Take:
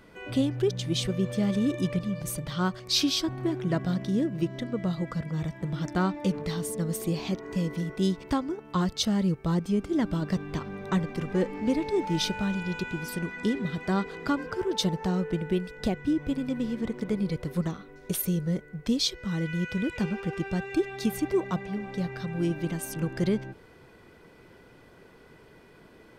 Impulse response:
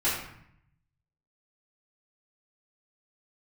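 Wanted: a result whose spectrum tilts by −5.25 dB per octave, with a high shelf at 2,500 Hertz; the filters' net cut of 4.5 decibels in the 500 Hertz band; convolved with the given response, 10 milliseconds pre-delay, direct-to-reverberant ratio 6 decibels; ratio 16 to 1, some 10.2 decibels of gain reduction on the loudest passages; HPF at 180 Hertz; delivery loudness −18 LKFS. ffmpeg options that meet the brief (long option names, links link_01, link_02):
-filter_complex "[0:a]highpass=180,equalizer=frequency=500:width_type=o:gain=-6,highshelf=frequency=2500:gain=-5.5,acompressor=threshold=-34dB:ratio=16,asplit=2[link_01][link_02];[1:a]atrim=start_sample=2205,adelay=10[link_03];[link_02][link_03]afir=irnorm=-1:irlink=0,volume=-17dB[link_04];[link_01][link_04]amix=inputs=2:normalize=0,volume=20dB"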